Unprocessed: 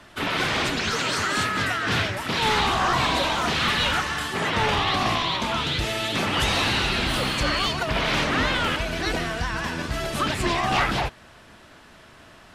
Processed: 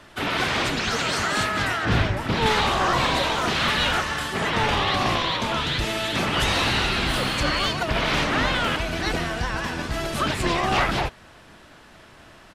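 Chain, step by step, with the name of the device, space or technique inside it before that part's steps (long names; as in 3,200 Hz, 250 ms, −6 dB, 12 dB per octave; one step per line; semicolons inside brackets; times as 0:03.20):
octave pedal (pitch-shifted copies added −12 semitones −8 dB)
0:01.85–0:02.46: spectral tilt −2 dB per octave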